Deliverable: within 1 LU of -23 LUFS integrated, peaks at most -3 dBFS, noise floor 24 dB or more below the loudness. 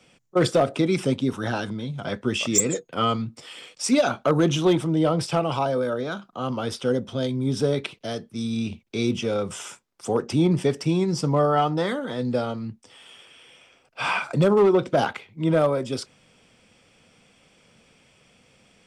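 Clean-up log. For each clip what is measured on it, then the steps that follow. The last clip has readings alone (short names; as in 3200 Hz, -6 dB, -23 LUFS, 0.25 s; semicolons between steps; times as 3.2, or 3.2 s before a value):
clipped 0.3%; flat tops at -12.0 dBFS; loudness -24.0 LUFS; peak -12.0 dBFS; loudness target -23.0 LUFS
-> clip repair -12 dBFS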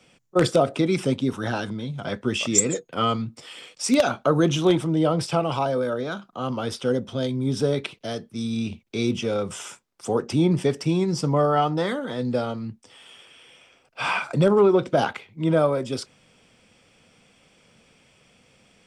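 clipped 0.0%; loudness -24.0 LUFS; peak -3.0 dBFS; loudness target -23.0 LUFS
-> gain +1 dB; limiter -3 dBFS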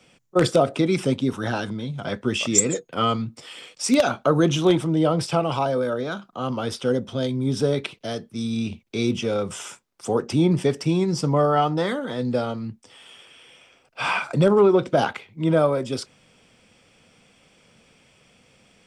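loudness -23.0 LUFS; peak -3.0 dBFS; noise floor -59 dBFS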